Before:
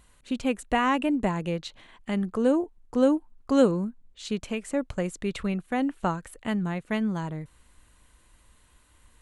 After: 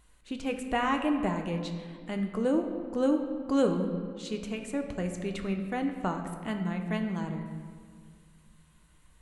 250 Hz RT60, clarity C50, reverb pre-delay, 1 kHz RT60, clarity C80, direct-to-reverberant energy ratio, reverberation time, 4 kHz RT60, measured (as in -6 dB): 2.5 s, 6.5 dB, 3 ms, 1.8 s, 8.0 dB, 4.0 dB, 1.9 s, 1.3 s